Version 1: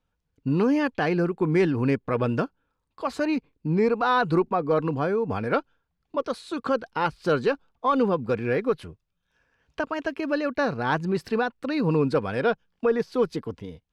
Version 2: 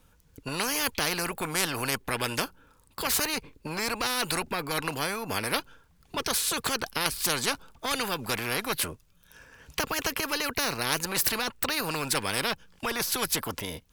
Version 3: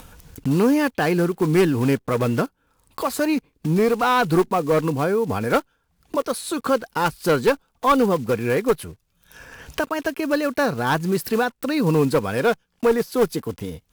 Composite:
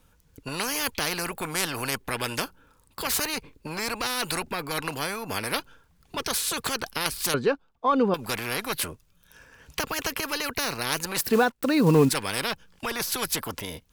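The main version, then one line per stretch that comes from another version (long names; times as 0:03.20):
2
0:07.34–0:08.14: punch in from 1
0:11.21–0:12.09: punch in from 3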